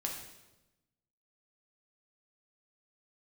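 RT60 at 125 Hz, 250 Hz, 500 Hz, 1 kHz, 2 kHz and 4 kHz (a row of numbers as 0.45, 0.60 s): 1.4, 1.3, 1.1, 0.95, 0.85, 0.90 s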